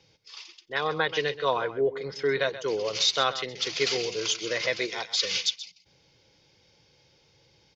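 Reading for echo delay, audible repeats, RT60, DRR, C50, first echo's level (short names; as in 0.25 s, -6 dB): 0.13 s, 1, none, none, none, -14.0 dB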